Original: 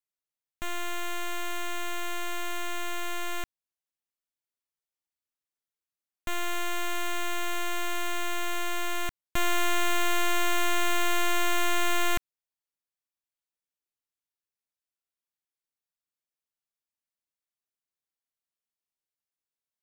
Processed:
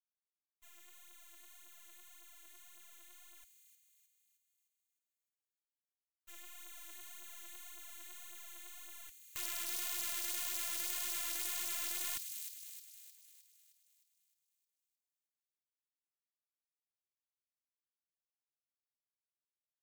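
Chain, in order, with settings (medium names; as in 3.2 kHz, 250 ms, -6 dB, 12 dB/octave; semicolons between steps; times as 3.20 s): expander -20 dBFS; phaser 1.8 Hz, delay 3.5 ms, feedback 67%; compression 2:1, threshold -29 dBFS, peak gain reduction 5 dB; integer overflow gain 27 dB; pre-emphasis filter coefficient 0.9; on a send: feedback echo behind a high-pass 309 ms, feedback 52%, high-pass 3.8 kHz, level -5 dB; on the sum: trim -2 dB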